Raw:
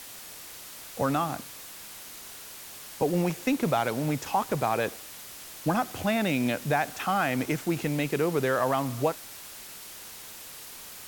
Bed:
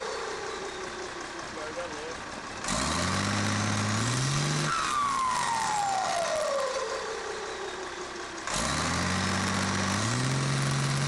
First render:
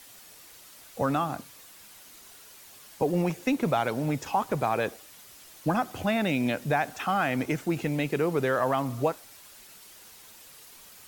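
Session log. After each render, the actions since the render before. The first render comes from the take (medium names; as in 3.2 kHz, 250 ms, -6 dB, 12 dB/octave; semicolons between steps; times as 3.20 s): noise reduction 8 dB, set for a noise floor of -44 dBFS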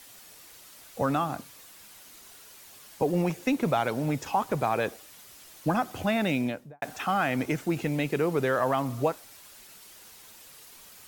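6.31–6.82 s: studio fade out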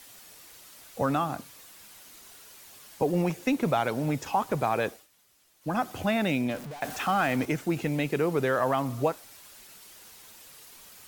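4.87–5.81 s: dip -14.5 dB, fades 0.21 s; 6.49–7.45 s: jump at every zero crossing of -37 dBFS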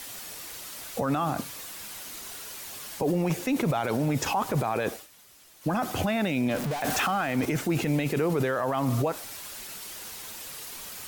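in parallel at +1.5 dB: compressor with a negative ratio -31 dBFS, ratio -0.5; on the sum: peak limiter -17.5 dBFS, peak gain reduction 8 dB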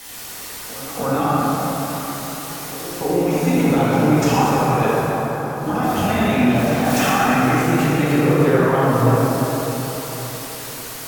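pre-echo 294 ms -15 dB; plate-style reverb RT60 4.5 s, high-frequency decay 0.45×, DRR -9.5 dB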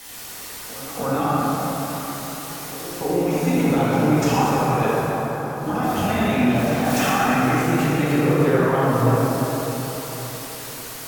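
trim -2.5 dB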